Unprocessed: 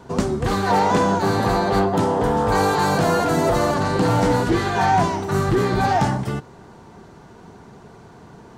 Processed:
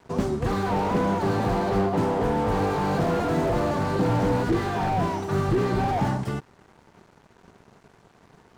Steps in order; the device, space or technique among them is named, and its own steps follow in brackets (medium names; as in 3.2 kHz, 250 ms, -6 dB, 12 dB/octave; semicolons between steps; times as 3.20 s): early transistor amplifier (crossover distortion -44 dBFS; slew-rate limiter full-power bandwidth 69 Hz); trim -3 dB